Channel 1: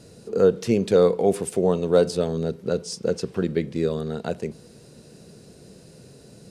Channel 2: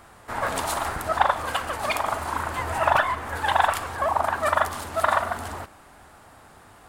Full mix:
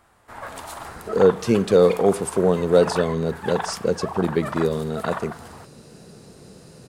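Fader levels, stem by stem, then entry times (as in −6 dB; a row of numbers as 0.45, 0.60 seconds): +2.0, −9.0 decibels; 0.80, 0.00 seconds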